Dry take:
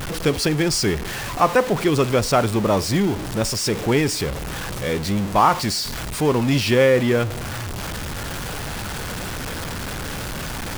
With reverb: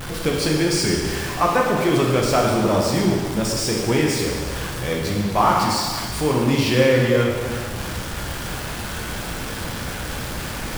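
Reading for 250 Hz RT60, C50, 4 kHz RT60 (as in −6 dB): 1.7 s, 1.0 dB, 1.6 s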